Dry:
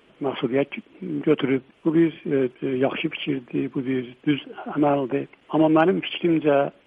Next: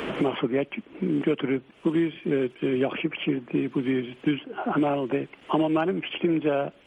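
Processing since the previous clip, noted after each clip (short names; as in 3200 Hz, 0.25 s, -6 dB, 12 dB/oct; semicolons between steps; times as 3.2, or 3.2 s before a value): three-band squash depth 100%; gain -4 dB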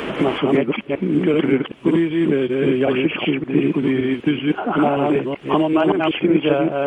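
reverse delay 0.191 s, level -1 dB; gain +5.5 dB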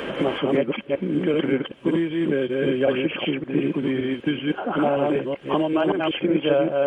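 small resonant body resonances 540/1600/3100 Hz, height 9 dB; gain -5.5 dB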